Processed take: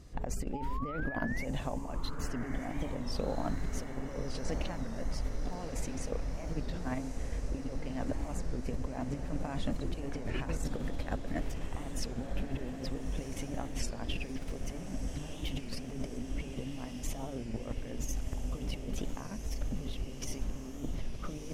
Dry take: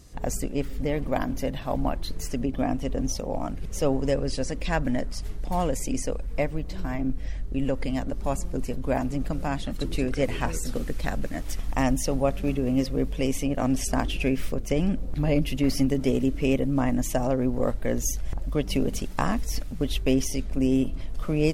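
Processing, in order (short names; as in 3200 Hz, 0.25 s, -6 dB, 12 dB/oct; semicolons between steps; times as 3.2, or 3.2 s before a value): high shelf 5000 Hz -12 dB; negative-ratio compressor -29 dBFS, ratio -0.5; painted sound rise, 0.53–1.45, 810–2300 Hz -36 dBFS; on a send: diffused feedback echo 1.326 s, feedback 72%, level -8 dB; on the sum: record warp 33 1/3 rpm, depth 160 cents; gain -6 dB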